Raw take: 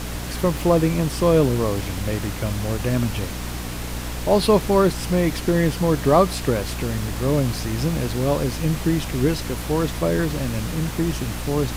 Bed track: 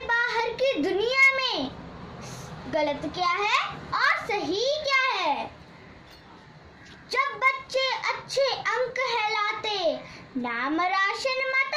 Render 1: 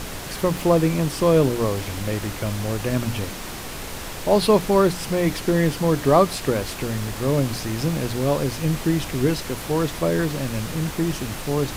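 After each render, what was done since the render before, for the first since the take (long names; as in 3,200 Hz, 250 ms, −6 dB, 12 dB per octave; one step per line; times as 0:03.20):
mains-hum notches 60/120/180/240/300 Hz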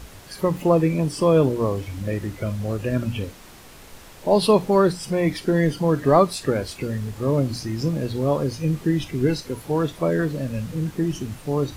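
noise reduction from a noise print 12 dB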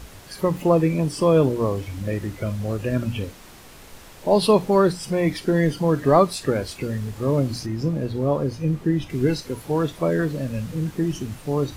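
0:07.66–0:09.10: high-shelf EQ 2,400 Hz −8 dB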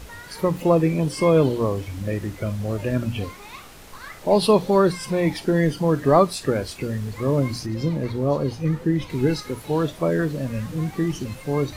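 mix in bed track −18 dB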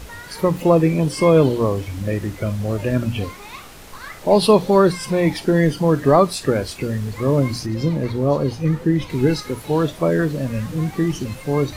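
level +3.5 dB
brickwall limiter −3 dBFS, peak gain reduction 2.5 dB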